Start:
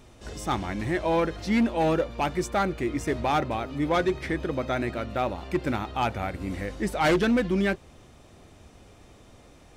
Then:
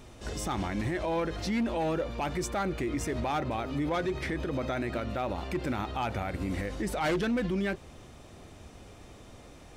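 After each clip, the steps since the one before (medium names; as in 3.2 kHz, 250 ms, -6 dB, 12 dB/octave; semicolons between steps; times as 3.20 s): peak limiter -25.5 dBFS, peak gain reduction 9.5 dB; trim +2 dB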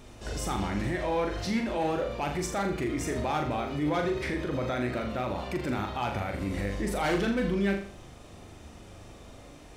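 flutter echo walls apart 6.9 m, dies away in 0.47 s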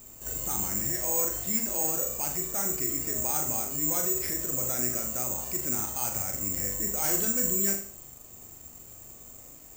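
on a send at -15.5 dB: reverberation, pre-delay 32 ms; on the sum: careless resampling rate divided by 6×, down filtered, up zero stuff; trim -7.5 dB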